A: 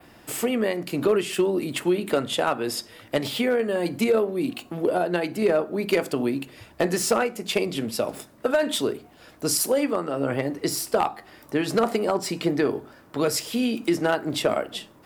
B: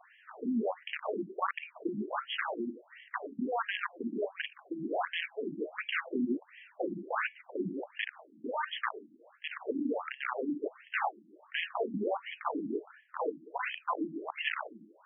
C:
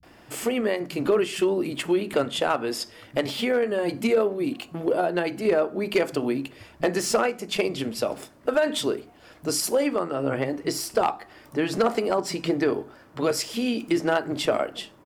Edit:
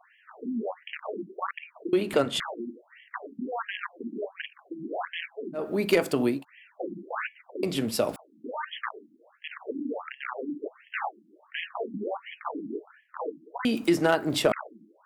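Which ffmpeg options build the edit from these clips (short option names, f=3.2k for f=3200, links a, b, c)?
-filter_complex "[0:a]asplit=3[a][b][c];[1:a]asplit=5[d][e][f][g][h];[d]atrim=end=1.932[i];[2:a]atrim=start=1.928:end=2.402[j];[e]atrim=start=2.398:end=5.69[k];[a]atrim=start=5.53:end=6.45[l];[f]atrim=start=6.29:end=7.632[m];[b]atrim=start=7.628:end=8.162[n];[g]atrim=start=8.158:end=13.652[o];[c]atrim=start=13.648:end=14.522[p];[h]atrim=start=14.518[q];[i][j]acrossfade=d=0.004:c1=hsin:c2=hsin[r];[r][k]acrossfade=d=0.004:c1=hsin:c2=hsin[s];[s][l]acrossfade=d=0.16:c1=tri:c2=tri[t];[t][m]acrossfade=d=0.16:c1=tri:c2=tri[u];[u][n]acrossfade=d=0.004:c1=hsin:c2=hsin[v];[v][o]acrossfade=d=0.004:c1=hsin:c2=hsin[w];[w][p]acrossfade=d=0.004:c1=hsin:c2=hsin[x];[x][q]acrossfade=d=0.004:c1=hsin:c2=hsin"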